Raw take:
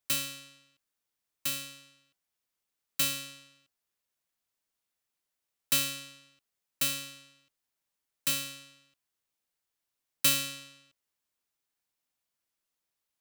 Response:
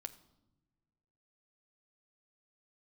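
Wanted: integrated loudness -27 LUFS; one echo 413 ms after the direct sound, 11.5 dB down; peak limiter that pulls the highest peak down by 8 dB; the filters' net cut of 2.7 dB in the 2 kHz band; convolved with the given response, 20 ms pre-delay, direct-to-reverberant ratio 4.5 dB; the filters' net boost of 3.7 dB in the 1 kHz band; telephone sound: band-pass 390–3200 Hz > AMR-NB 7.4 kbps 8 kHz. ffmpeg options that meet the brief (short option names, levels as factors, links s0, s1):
-filter_complex "[0:a]equalizer=f=1000:t=o:g=7,equalizer=f=2000:t=o:g=-3.5,alimiter=limit=0.1:level=0:latency=1,aecho=1:1:413:0.266,asplit=2[s0][s1];[1:a]atrim=start_sample=2205,adelay=20[s2];[s1][s2]afir=irnorm=-1:irlink=0,volume=0.944[s3];[s0][s3]amix=inputs=2:normalize=0,highpass=390,lowpass=3200,volume=6.31" -ar 8000 -c:a libopencore_amrnb -b:a 7400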